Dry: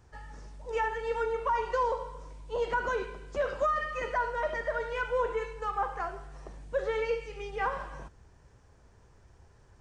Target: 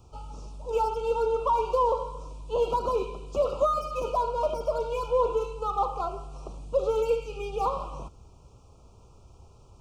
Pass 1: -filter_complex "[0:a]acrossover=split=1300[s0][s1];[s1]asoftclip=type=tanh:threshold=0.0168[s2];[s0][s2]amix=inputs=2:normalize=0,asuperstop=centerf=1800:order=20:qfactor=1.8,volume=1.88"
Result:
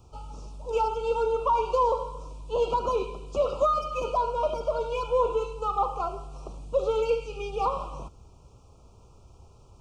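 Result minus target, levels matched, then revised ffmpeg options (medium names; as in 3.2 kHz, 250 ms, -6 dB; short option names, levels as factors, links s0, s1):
saturation: distortion -8 dB
-filter_complex "[0:a]acrossover=split=1300[s0][s1];[s1]asoftclip=type=tanh:threshold=0.00562[s2];[s0][s2]amix=inputs=2:normalize=0,asuperstop=centerf=1800:order=20:qfactor=1.8,volume=1.88"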